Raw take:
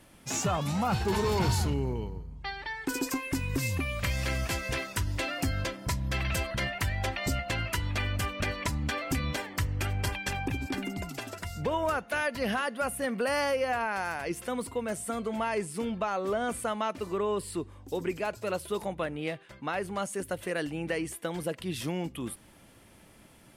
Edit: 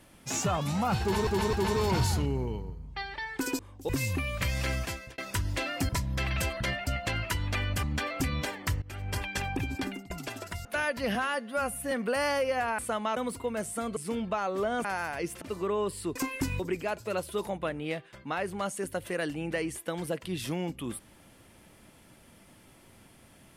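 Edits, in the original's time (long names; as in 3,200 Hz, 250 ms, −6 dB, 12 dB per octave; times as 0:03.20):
0:01.01–0:01.27: repeat, 3 plays
0:03.07–0:03.51: swap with 0:17.66–0:17.96
0:04.36–0:04.80: fade out
0:05.51–0:05.83: remove
0:06.81–0:07.30: remove
0:08.26–0:08.74: remove
0:09.73–0:10.16: fade in, from −21.5 dB
0:10.76–0:11.01: fade out, to −22 dB
0:11.56–0:12.03: remove
0:12.53–0:13.04: time-stretch 1.5×
0:13.91–0:14.48: swap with 0:16.54–0:16.92
0:15.28–0:15.66: remove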